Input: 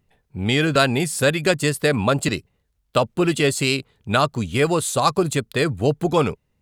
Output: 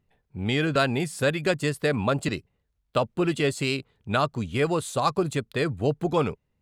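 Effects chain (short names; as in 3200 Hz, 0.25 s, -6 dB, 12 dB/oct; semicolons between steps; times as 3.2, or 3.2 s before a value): high shelf 5400 Hz -8.5 dB; gain -5 dB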